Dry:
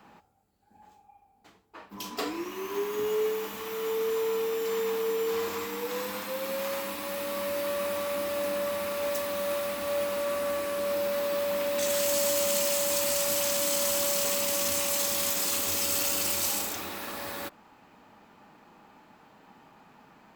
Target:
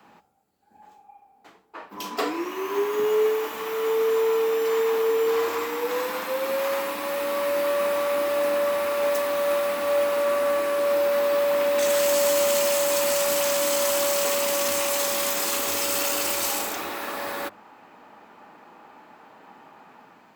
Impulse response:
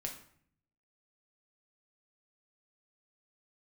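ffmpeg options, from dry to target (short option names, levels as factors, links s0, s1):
-filter_complex "[0:a]highpass=f=130:p=1,acrossover=split=300|2400[s0][s1][s2];[s1]dynaudnorm=f=570:g=3:m=2.11[s3];[s0][s3][s2]amix=inputs=3:normalize=0,bandreject=f=50:t=h:w=6,bandreject=f=100:t=h:w=6,bandreject=f=150:t=h:w=6,bandreject=f=200:t=h:w=6,volume=1.19"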